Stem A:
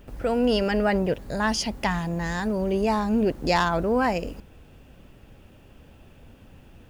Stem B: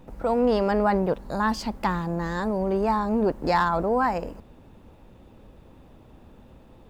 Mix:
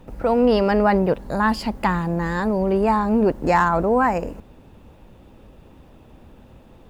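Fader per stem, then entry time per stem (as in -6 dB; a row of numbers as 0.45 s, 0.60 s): -6.5 dB, +2.5 dB; 0.00 s, 0.00 s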